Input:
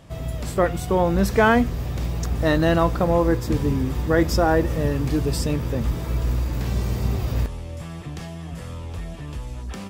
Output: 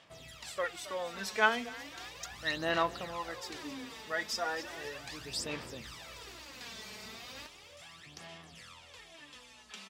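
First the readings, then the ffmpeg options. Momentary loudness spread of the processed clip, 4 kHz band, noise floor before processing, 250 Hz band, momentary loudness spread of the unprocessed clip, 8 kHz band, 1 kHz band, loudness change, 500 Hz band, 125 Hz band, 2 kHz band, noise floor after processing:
20 LU, -4.0 dB, -34 dBFS, -22.5 dB, 16 LU, -7.5 dB, -11.5 dB, -14.5 dB, -17.0 dB, -30.0 dB, -6.5 dB, -56 dBFS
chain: -filter_complex "[0:a]bandpass=f=3700:t=q:w=0.83:csg=0,asplit=2[s0][s1];[s1]asplit=6[s2][s3][s4][s5][s6][s7];[s2]adelay=269,afreqshift=35,volume=0.2[s8];[s3]adelay=538,afreqshift=70,volume=0.112[s9];[s4]adelay=807,afreqshift=105,volume=0.0624[s10];[s5]adelay=1076,afreqshift=140,volume=0.0351[s11];[s6]adelay=1345,afreqshift=175,volume=0.0197[s12];[s7]adelay=1614,afreqshift=210,volume=0.011[s13];[s8][s9][s10][s11][s12][s13]amix=inputs=6:normalize=0[s14];[s0][s14]amix=inputs=2:normalize=0,aphaser=in_gain=1:out_gain=1:delay=4.7:decay=0.63:speed=0.36:type=sinusoidal,volume=0.531"

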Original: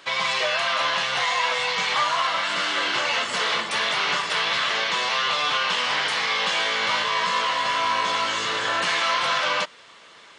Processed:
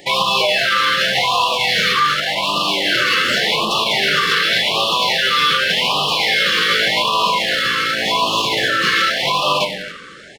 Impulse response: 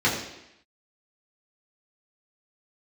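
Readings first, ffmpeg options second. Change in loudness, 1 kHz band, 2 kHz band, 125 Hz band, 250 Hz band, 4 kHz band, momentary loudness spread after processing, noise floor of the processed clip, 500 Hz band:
+7.0 dB, +5.5 dB, +6.5 dB, +13.0 dB, +12.0 dB, +8.5 dB, 3 LU, -34 dBFS, +8.0 dB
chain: -filter_complex "[0:a]aecho=1:1:276:0.1,asplit=2[s0][s1];[1:a]atrim=start_sample=2205,asetrate=34839,aresample=44100[s2];[s1][s2]afir=irnorm=-1:irlink=0,volume=0.0944[s3];[s0][s3]amix=inputs=2:normalize=0,acrossover=split=6300[s4][s5];[s5]acompressor=threshold=0.00178:ratio=4:attack=1:release=60[s6];[s4][s6]amix=inputs=2:normalize=0,crystalizer=i=7.5:c=0,highshelf=f=3100:g=-10,asplit=2[s7][s8];[s8]adynamicsmooth=sensitivity=7:basefreq=1600,volume=1.26[s9];[s7][s9]amix=inputs=2:normalize=0,lowshelf=f=370:g=8.5,alimiter=limit=0.501:level=0:latency=1:release=70,afftfilt=real='re*(1-between(b*sr/1024,750*pow(1800/750,0.5+0.5*sin(2*PI*0.87*pts/sr))/1.41,750*pow(1800/750,0.5+0.5*sin(2*PI*0.87*pts/sr))*1.41))':imag='im*(1-between(b*sr/1024,750*pow(1800/750,0.5+0.5*sin(2*PI*0.87*pts/sr))/1.41,750*pow(1800/750,0.5+0.5*sin(2*PI*0.87*pts/sr))*1.41))':win_size=1024:overlap=0.75"

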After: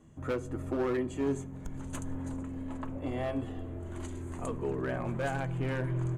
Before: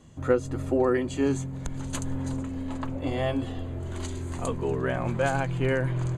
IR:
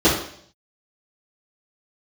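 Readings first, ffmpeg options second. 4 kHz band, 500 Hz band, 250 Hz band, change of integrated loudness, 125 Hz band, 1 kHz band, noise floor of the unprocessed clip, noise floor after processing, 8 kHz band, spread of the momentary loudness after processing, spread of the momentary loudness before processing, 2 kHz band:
-9.5 dB, -7.5 dB, -5.5 dB, -6.5 dB, -6.0 dB, -7.0 dB, -36 dBFS, -43 dBFS, -9.0 dB, 9 LU, 9 LU, -7.5 dB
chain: -filter_complex "[0:a]equalizer=f=4400:w=1.3:g=-10.5,asoftclip=type=hard:threshold=0.0891,asplit=2[s0][s1];[1:a]atrim=start_sample=2205[s2];[s1][s2]afir=irnorm=-1:irlink=0,volume=0.0168[s3];[s0][s3]amix=inputs=2:normalize=0,volume=0.531"

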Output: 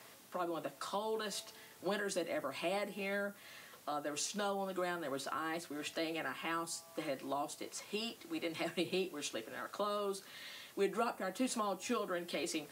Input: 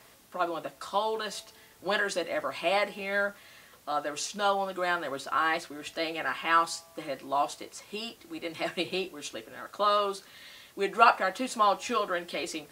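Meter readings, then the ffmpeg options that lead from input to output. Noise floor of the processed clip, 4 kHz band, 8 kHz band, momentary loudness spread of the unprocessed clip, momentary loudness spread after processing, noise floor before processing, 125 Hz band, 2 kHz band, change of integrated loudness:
-58 dBFS, -8.0 dB, -3.5 dB, 14 LU, 7 LU, -56 dBFS, -2.0 dB, -11.5 dB, -10.0 dB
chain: -filter_complex "[0:a]highpass=120,acrossover=split=390|7500[s0][s1][s2];[s1]acompressor=threshold=0.0126:ratio=6[s3];[s0][s3][s2]amix=inputs=3:normalize=0,volume=0.891"

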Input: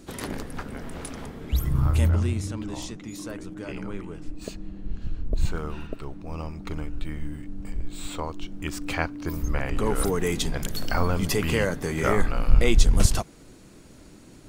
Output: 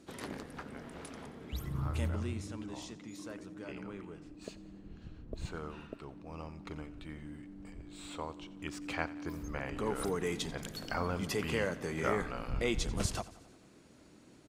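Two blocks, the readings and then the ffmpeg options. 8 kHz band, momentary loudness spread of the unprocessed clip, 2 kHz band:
-11.5 dB, 16 LU, -8.0 dB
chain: -af "aresample=32000,aresample=44100,highpass=f=150:p=1,highshelf=f=9300:g=-10,aecho=1:1:89|178|267|356|445:0.126|0.0743|0.0438|0.0259|0.0153,volume=0.398"

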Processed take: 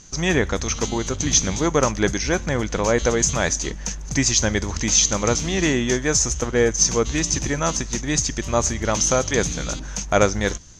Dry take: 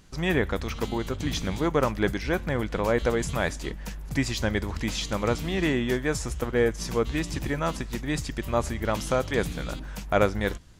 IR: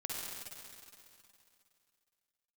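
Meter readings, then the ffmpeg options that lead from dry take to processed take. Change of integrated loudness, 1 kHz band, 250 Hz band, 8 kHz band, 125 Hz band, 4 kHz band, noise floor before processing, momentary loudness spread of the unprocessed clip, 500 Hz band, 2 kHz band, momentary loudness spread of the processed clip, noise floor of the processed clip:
+7.0 dB, +4.5 dB, +4.5 dB, +20.0 dB, +4.5 dB, +9.5 dB, -37 dBFS, 6 LU, +4.5 dB, +5.0 dB, 6 LU, -32 dBFS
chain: -af "lowpass=f=6300:t=q:w=11,volume=1.68"

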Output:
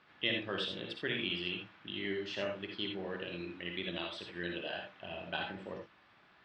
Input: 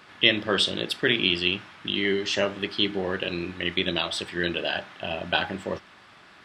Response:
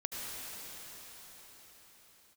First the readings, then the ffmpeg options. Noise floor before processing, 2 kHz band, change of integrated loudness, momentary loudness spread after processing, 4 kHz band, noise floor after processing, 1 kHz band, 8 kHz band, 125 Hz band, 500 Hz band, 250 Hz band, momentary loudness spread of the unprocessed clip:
-52 dBFS, -12.5 dB, -13.0 dB, 9 LU, -14.0 dB, -65 dBFS, -12.5 dB, under -20 dB, -11.5 dB, -12.0 dB, -12.0 dB, 10 LU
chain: -filter_complex "[0:a]lowpass=3900[s0];[1:a]atrim=start_sample=2205,atrim=end_sample=6174,asetrate=66150,aresample=44100[s1];[s0][s1]afir=irnorm=-1:irlink=0,volume=0.422"

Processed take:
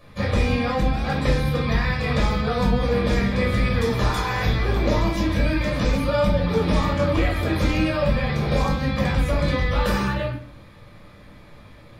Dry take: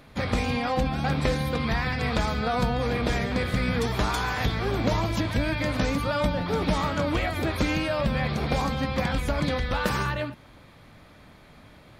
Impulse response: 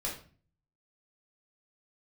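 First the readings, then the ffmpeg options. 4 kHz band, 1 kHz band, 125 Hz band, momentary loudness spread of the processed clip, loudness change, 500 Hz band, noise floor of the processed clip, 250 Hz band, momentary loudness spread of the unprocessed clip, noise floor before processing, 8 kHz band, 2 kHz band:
+1.5 dB, +1.5 dB, +5.5 dB, 2 LU, +4.0 dB, +4.5 dB, -46 dBFS, +4.0 dB, 1 LU, -51 dBFS, +0.5 dB, +2.5 dB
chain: -filter_complex "[0:a]equalizer=f=690:t=o:w=0.26:g=-5.5[s0];[1:a]atrim=start_sample=2205[s1];[s0][s1]afir=irnorm=-1:irlink=0"

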